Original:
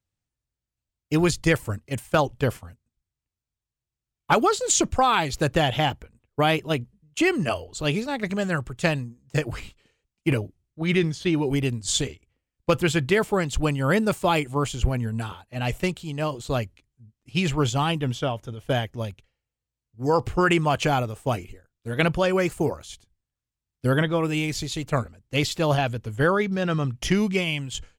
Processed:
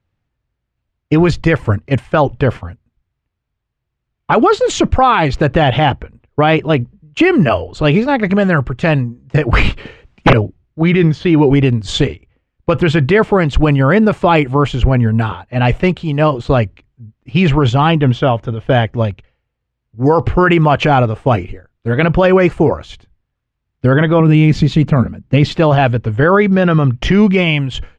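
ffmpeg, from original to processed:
-filter_complex "[0:a]asettb=1/sr,asplit=3[s0][s1][s2];[s0]atrim=end=9.534[s3];[s1]atrim=start=9.53:end=10.33,asetpts=PTS-STARTPTS,afade=t=in:d=0.004:c=qsin,afade=t=out:st=0.796:d=0.004:c=qsin,aeval=exprs='0.355*sin(PI/2*5.01*val(0)/0.355)':c=same[s4];[s2]atrim=start=10.326[s5];[s3][s4]acrossfade=d=0.004:c1=hsin:c2=qsin[s6];[s6][s5]acrossfade=d=0.004:c1=qsin:c2=hsin,asettb=1/sr,asplit=3[s7][s8][s9];[s7]atrim=end=24.204[s10];[s8]atrim=start=24.2:end=25.54,asetpts=PTS-STARTPTS,afade=t=in:d=0.004:c=qsin,afade=t=out:st=1.336:d=0.004:c=qsin,equalizer=f=190:w=1.5:g=14.5[s11];[s9]atrim=start=25.536[s12];[s10][s11]acrossfade=d=0.004:c1=hsin:c2=qsin[s13];[s13][s12]acrossfade=d=0.004:c1=qsin:c2=hsin,lowpass=2400,alimiter=level_in=6.31:limit=0.891:release=50:level=0:latency=1,volume=0.891"

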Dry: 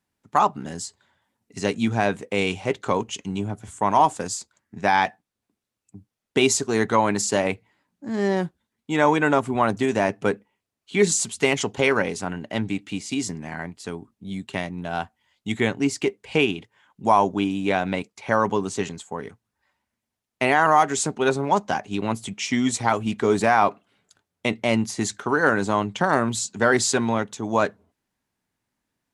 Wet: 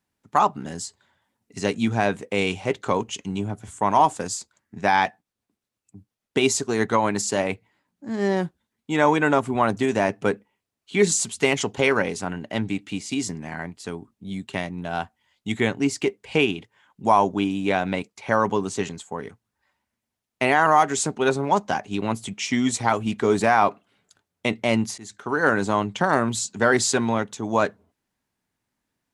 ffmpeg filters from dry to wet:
-filter_complex "[0:a]asettb=1/sr,asplit=3[s0][s1][s2];[s0]atrim=end=5.064[s3];[s1]atrim=start=5.06:end=8.25,asetpts=PTS-STARTPTS,afade=t=in:d=0.004:c=qsin,afade=t=out:st=3.186:d=0.004:c=qsin,tremolo=f=8.5:d=0.29[s4];[s2]atrim=start=8.246[s5];[s3][s4]acrossfade=d=0.004:c1=hsin:c2=qsin[s6];[s6][s5]acrossfade=d=0.004:c1=qsin:c2=hsin,asplit=2[s7][s8];[s7]atrim=end=24.98,asetpts=PTS-STARTPTS,afade=t=out:st=24.976:d=0.004:c=hsin:silence=0.0668344[s9];[s8]atrim=start=24.98,asetpts=PTS-STARTPTS,afade=t=in:d=0.51:silence=0.0668344[s10];[s9][s10]concat=n=2:v=0:a=1"

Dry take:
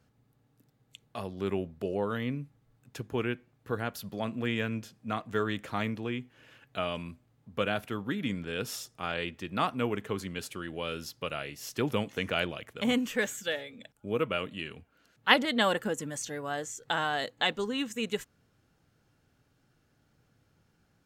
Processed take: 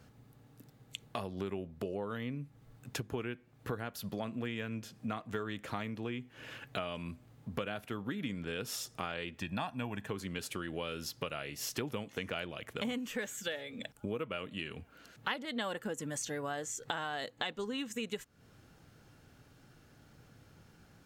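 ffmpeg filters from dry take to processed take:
-filter_complex "[0:a]asettb=1/sr,asplit=3[s0][s1][s2];[s0]atrim=end=9.404[s3];[s1]atrim=start=9.4:end=10.1,asetpts=PTS-STARTPTS,afade=t=in:d=0.004:c=qsin,afade=t=out:st=0.696:d=0.004:c=qsin,aecho=1:1:1.2:0.65,atrim=end_sample=30870[s4];[s2]atrim=start=10.096[s5];[s3][s4]acrossfade=d=0.004:c1=hsin:c2=qsin[s6];[s6][s5]acrossfade=d=0.004:c1=qsin:c2=hsin,acompressor=threshold=0.00562:ratio=6,volume=2.82"

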